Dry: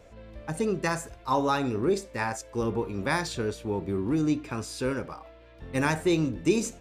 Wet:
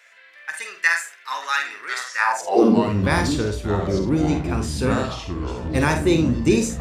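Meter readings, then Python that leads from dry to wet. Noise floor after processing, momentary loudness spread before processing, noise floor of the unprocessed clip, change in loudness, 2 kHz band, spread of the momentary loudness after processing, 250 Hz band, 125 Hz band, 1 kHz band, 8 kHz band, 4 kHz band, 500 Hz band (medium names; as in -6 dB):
-49 dBFS, 9 LU, -51 dBFS, +7.5 dB, +11.0 dB, 11 LU, +7.5 dB, +9.0 dB, +6.0 dB, +6.5 dB, +7.5 dB, +6.0 dB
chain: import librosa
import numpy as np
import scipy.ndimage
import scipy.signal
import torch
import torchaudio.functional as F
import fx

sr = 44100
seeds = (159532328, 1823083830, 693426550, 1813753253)

y = fx.room_early_taps(x, sr, ms=(48, 78), db=(-7.0, -15.0))
y = fx.echo_pitch(y, sr, ms=771, semitones=-5, count=3, db_per_echo=-6.0)
y = fx.filter_sweep_highpass(y, sr, from_hz=1800.0, to_hz=61.0, start_s=2.13, end_s=3.09, q=3.8)
y = y * 10.0 ** (5.0 / 20.0)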